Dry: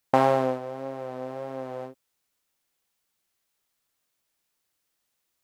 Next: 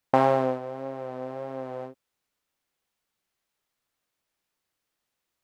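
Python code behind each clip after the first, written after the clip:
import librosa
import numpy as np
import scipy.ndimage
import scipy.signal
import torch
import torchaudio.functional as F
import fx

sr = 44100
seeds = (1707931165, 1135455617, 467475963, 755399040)

y = fx.high_shelf(x, sr, hz=4700.0, db=-8.0)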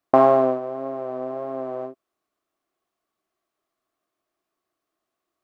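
y = fx.small_body(x, sr, hz=(350.0, 650.0, 1100.0), ring_ms=25, db=16)
y = y * librosa.db_to_amplitude(-5.0)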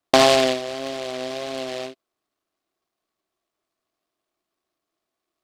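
y = fx.noise_mod_delay(x, sr, seeds[0], noise_hz=2900.0, depth_ms=0.11)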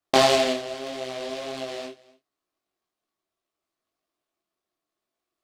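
y = x + 10.0 ** (-22.0 / 20.0) * np.pad(x, (int(254 * sr / 1000.0), 0))[:len(x)]
y = fx.detune_double(y, sr, cents=26)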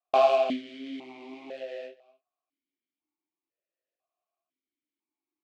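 y = fx.vowel_held(x, sr, hz=2.0)
y = y * librosa.db_to_amplitude(4.0)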